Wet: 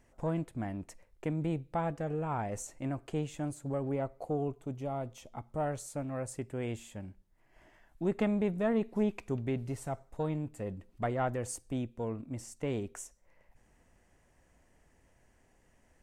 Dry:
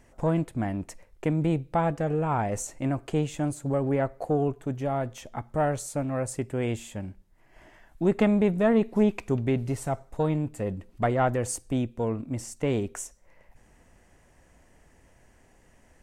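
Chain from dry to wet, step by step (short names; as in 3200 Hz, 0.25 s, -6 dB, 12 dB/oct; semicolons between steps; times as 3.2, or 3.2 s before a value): 3.92–5.66 bell 1700 Hz -10.5 dB 0.35 oct; gain -8 dB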